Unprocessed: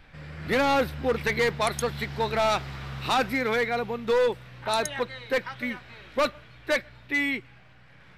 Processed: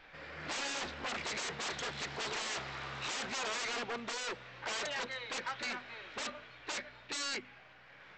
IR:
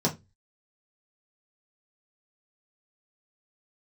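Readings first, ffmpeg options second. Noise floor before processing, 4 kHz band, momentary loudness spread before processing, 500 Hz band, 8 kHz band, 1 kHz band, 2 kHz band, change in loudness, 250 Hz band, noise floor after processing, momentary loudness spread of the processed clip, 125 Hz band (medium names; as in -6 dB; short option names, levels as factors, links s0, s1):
-53 dBFS, -4.5 dB, 10 LU, -18.5 dB, -1.5 dB, -13.0 dB, -9.5 dB, -11.5 dB, -17.0 dB, -57 dBFS, 7 LU, -17.0 dB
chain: -af "bandreject=f=50:t=h:w=6,bandreject=f=100:t=h:w=6,bandreject=f=150:t=h:w=6,bandreject=f=200:t=h:w=6,bandreject=f=250:t=h:w=6,aresample=16000,aeval=exprs='0.0282*(abs(mod(val(0)/0.0282+3,4)-2)-1)':c=same,aresample=44100,bass=f=250:g=-15,treble=f=4000:g=-3"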